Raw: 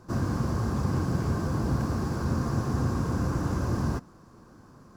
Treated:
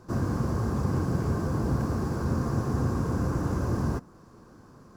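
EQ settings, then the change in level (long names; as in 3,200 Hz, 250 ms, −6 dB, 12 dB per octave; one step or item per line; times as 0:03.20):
parametric band 440 Hz +3 dB 0.52 octaves
dynamic equaliser 3,700 Hz, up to −4 dB, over −56 dBFS, Q 0.73
0.0 dB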